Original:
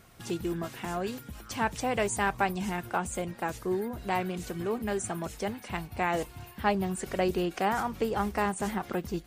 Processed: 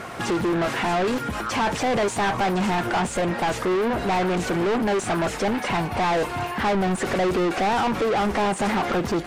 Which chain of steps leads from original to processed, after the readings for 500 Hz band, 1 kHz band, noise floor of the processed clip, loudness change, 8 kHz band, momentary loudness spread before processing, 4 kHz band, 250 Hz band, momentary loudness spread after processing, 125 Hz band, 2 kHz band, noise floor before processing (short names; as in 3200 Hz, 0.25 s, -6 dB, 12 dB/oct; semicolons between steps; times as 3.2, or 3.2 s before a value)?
+8.5 dB, +8.5 dB, -32 dBFS, +8.5 dB, +4.5 dB, 7 LU, +10.5 dB, +8.5 dB, 3 LU, +7.5 dB, +8.0 dB, -50 dBFS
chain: bell 3900 Hz -9 dB 2.2 oct; overdrive pedal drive 37 dB, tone 4000 Hz, clips at -15 dBFS; air absorption 51 m